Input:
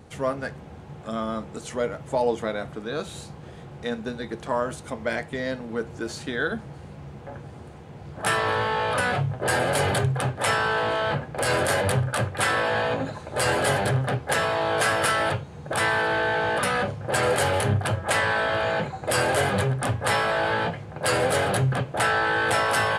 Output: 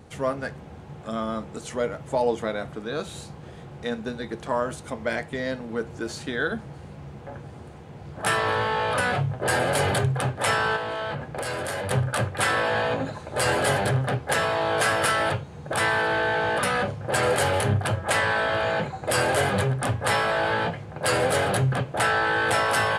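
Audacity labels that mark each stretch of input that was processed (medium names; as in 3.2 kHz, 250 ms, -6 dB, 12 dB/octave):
10.760000	11.910000	compression, threshold -26 dBFS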